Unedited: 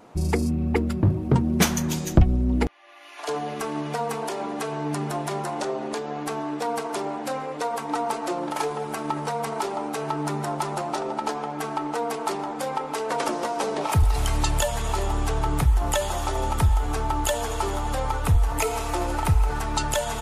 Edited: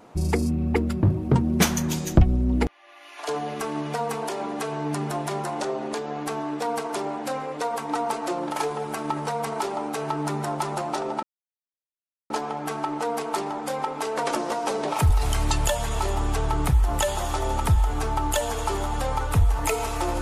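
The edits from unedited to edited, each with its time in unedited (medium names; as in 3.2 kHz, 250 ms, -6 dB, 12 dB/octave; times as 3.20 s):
11.23 s: insert silence 1.07 s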